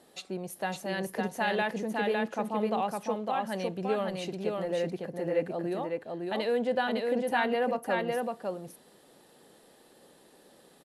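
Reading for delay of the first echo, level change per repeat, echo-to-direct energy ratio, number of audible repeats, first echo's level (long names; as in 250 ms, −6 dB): 556 ms, repeats not evenly spaced, −3.0 dB, 1, −3.0 dB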